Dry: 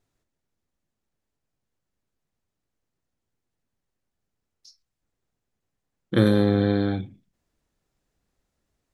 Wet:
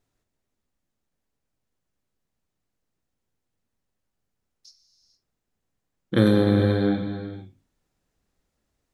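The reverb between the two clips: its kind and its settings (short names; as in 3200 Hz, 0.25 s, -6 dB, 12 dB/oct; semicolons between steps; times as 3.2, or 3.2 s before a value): non-linear reverb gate 0.49 s flat, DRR 6.5 dB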